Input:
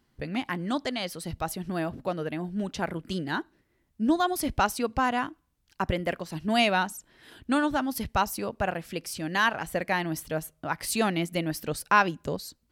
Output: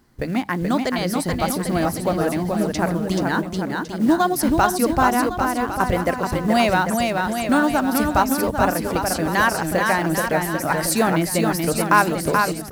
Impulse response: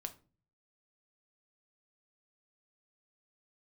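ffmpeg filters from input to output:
-filter_complex "[0:a]asplit=2[s0][s1];[s1]acompressor=threshold=0.02:ratio=4,volume=1.41[s2];[s0][s2]amix=inputs=2:normalize=0,equalizer=f=3000:t=o:w=0.83:g=-8,bandreject=f=50:t=h:w=6,bandreject=f=100:t=h:w=6,bandreject=f=150:t=h:w=6,bandreject=f=200:t=h:w=6,acrusher=bits=7:mode=log:mix=0:aa=0.000001,aecho=1:1:430|795.5|1106|1370|1595:0.631|0.398|0.251|0.158|0.1,volume=1.58"

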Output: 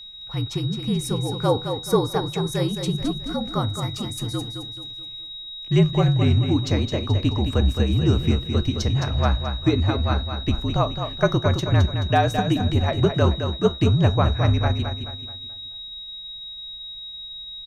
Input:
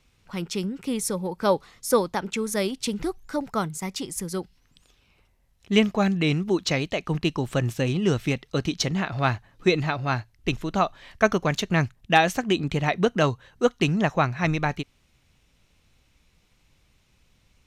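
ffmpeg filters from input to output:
-filter_complex "[0:a]bass=f=250:g=7,treble=f=4000:g=-5,acrossover=split=290|1700|4200[s0][s1][s2][s3];[s2]acompressor=threshold=0.00355:ratio=6[s4];[s0][s1][s4][s3]amix=inputs=4:normalize=0,afreqshift=-54,aeval=exprs='val(0)+0.0126*sin(2*PI*3800*n/s)':c=same,flanger=delay=9.4:depth=2.2:regen=-77:speed=0.36:shape=triangular,aecho=1:1:215|430|645|860|1075:0.422|0.169|0.0675|0.027|0.0108,volume=1.68"

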